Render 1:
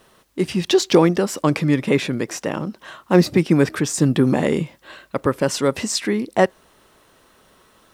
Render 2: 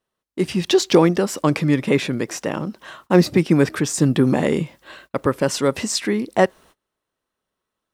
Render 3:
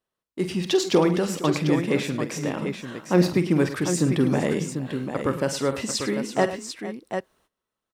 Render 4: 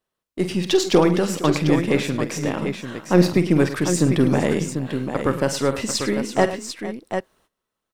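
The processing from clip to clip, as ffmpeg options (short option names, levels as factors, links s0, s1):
-af "agate=range=0.0447:threshold=0.00501:ratio=16:detection=peak"
-af "aecho=1:1:45|51|106|462|744:0.211|0.211|0.2|0.15|0.422,volume=0.531"
-af "aeval=exprs='if(lt(val(0),0),0.708*val(0),val(0))':c=same,volume=1.68"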